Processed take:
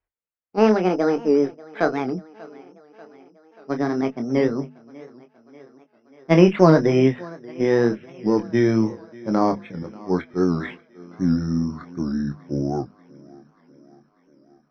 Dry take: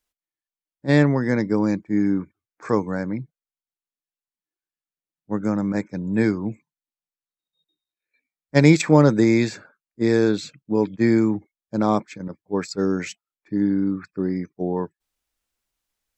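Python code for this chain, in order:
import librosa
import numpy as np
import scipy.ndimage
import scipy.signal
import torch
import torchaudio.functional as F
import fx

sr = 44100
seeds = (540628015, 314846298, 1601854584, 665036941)

p1 = fx.speed_glide(x, sr, from_pct=155, to_pct=65)
p2 = (np.kron(scipy.signal.resample_poly(p1, 1, 8), np.eye(8)[0]) * 8)[:len(p1)]
p3 = fx.cheby_harmonics(p2, sr, harmonics=(6,), levels_db=(-33,), full_scale_db=15.5)
p4 = fx.hum_notches(p3, sr, base_hz=50, count=5)
p5 = p4 + fx.echo_thinned(p4, sr, ms=589, feedback_pct=66, hz=160.0, wet_db=-21.5, dry=0)
p6 = fx.chorus_voices(p5, sr, voices=2, hz=0.92, base_ms=25, depth_ms=3.0, mix_pct=30)
p7 = scipy.signal.sosfilt(scipy.signal.butter(4, 2200.0, 'lowpass', fs=sr, output='sos'), p6)
p8 = fx.record_warp(p7, sr, rpm=78.0, depth_cents=100.0)
y = F.gain(torch.from_numpy(p8), 3.5).numpy()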